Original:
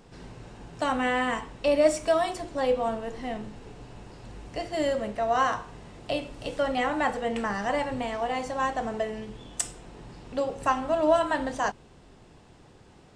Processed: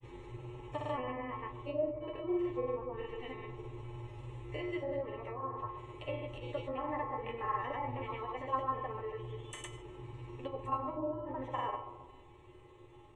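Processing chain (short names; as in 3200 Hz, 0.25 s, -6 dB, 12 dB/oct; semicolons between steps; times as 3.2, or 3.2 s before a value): treble ducked by the level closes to 470 Hz, closed at -20 dBFS; high shelf 5300 Hz -11.5 dB; in parallel at -3 dB: compressor, threshold -38 dBFS, peak gain reduction 16.5 dB; on the sum: fixed phaser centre 1000 Hz, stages 8; resonator 120 Hz, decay 0.45 s, harmonics odd, mix 90%; grains, pitch spread up and down by 0 st; resonator 88 Hz, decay 0.18 s, harmonics all, mix 70%; analogue delay 0.133 s, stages 1024, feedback 52%, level -10.5 dB; gain +14.5 dB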